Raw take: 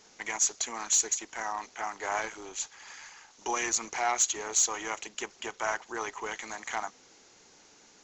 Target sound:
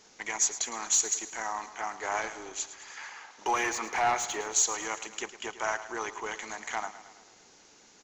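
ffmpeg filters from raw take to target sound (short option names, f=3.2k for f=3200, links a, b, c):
-filter_complex "[0:a]asettb=1/sr,asplit=3[a][b][c];[a]atrim=end=2.964[d];[b]atrim=start=2.96:end=4.41,asetpts=PTS-STARTPTS,afade=t=in:d=0.004:c=qsin,afade=t=out:st=1.446:d=0.004:c=qsin,asplit=2[e][f];[f]highpass=f=720:p=1,volume=16dB,asoftclip=type=tanh:threshold=-16dB[g];[e][g]amix=inputs=2:normalize=0,lowpass=f=1.5k:p=1,volume=-6dB[h];[c]atrim=start=4.406[i];[d][h]acrossfade=d=0.004:c1=hsin:c2=qsin[j];[j][i]acrossfade=d=0.004:c1=qsin:c2=hsin,aecho=1:1:109|218|327|436|545|654:0.2|0.116|0.0671|0.0389|0.0226|0.0131"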